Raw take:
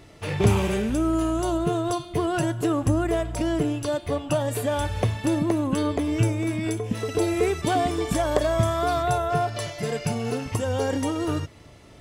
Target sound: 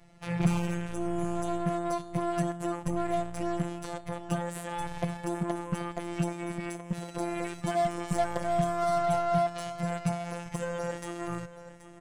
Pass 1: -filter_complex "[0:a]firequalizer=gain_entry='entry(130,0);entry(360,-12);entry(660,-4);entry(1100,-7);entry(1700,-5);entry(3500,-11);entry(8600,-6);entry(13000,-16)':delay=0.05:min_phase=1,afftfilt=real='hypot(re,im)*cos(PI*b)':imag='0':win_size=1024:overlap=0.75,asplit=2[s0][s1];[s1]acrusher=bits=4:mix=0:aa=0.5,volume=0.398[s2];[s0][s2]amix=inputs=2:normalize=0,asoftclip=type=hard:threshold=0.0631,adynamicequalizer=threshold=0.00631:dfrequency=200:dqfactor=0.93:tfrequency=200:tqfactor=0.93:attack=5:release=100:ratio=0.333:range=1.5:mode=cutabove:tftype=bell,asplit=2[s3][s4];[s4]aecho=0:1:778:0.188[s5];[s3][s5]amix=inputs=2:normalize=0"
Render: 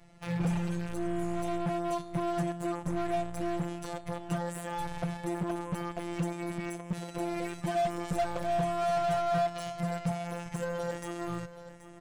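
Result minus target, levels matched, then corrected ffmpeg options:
hard clipper: distortion +20 dB
-filter_complex "[0:a]firequalizer=gain_entry='entry(130,0);entry(360,-12);entry(660,-4);entry(1100,-7);entry(1700,-5);entry(3500,-11);entry(8600,-6);entry(13000,-16)':delay=0.05:min_phase=1,afftfilt=real='hypot(re,im)*cos(PI*b)':imag='0':win_size=1024:overlap=0.75,asplit=2[s0][s1];[s1]acrusher=bits=4:mix=0:aa=0.5,volume=0.398[s2];[s0][s2]amix=inputs=2:normalize=0,asoftclip=type=hard:threshold=0.2,adynamicequalizer=threshold=0.00631:dfrequency=200:dqfactor=0.93:tfrequency=200:tqfactor=0.93:attack=5:release=100:ratio=0.333:range=1.5:mode=cutabove:tftype=bell,asplit=2[s3][s4];[s4]aecho=0:1:778:0.188[s5];[s3][s5]amix=inputs=2:normalize=0"

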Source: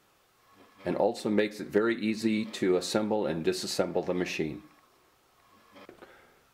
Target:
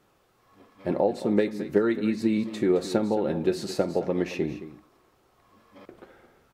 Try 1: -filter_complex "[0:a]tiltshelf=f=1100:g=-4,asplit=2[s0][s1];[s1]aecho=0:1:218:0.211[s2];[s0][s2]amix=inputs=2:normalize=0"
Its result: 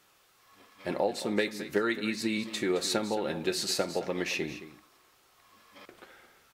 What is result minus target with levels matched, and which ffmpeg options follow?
1 kHz band +3.0 dB
-filter_complex "[0:a]tiltshelf=f=1100:g=4.5,asplit=2[s0][s1];[s1]aecho=0:1:218:0.211[s2];[s0][s2]amix=inputs=2:normalize=0"

